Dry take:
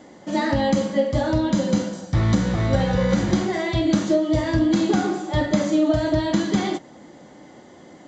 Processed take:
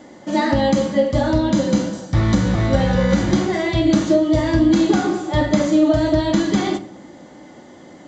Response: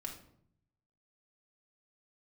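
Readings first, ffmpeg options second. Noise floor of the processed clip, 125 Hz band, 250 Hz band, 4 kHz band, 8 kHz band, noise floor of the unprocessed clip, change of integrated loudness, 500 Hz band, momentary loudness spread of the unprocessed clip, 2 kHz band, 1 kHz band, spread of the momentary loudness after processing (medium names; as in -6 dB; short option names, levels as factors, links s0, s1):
-43 dBFS, +2.5 dB, +4.0 dB, +3.0 dB, no reading, -47 dBFS, +3.5 dB, +3.5 dB, 4 LU, +3.0 dB, +3.5 dB, 5 LU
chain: -filter_complex "[0:a]asplit=2[s0][s1];[1:a]atrim=start_sample=2205[s2];[s1][s2]afir=irnorm=-1:irlink=0,volume=0.668[s3];[s0][s3]amix=inputs=2:normalize=0"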